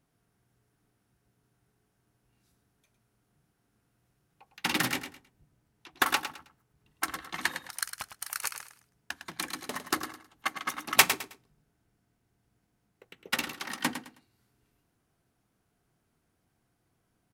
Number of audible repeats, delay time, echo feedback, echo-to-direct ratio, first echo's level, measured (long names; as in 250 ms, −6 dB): 3, 106 ms, 26%, −9.5 dB, −10.0 dB